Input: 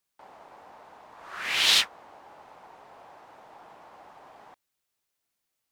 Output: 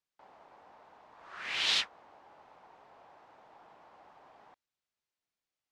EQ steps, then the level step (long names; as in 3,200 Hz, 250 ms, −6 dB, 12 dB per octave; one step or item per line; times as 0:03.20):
low-pass filter 5,900 Hz 12 dB per octave
−7.5 dB